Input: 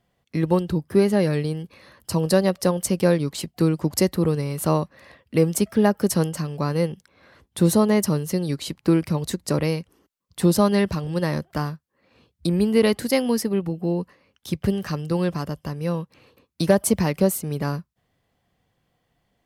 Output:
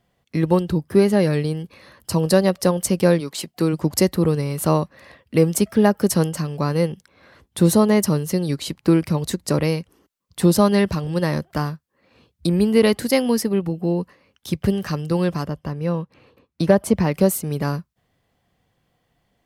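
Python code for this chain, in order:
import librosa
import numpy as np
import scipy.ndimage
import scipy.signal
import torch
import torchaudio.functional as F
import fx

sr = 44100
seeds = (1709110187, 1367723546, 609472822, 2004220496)

y = fx.highpass(x, sr, hz=fx.line((3.19, 510.0), (3.72, 210.0)), slope=6, at=(3.19, 3.72), fade=0.02)
y = fx.high_shelf(y, sr, hz=4400.0, db=-12.0, at=(15.46, 17.12))
y = F.gain(torch.from_numpy(y), 2.5).numpy()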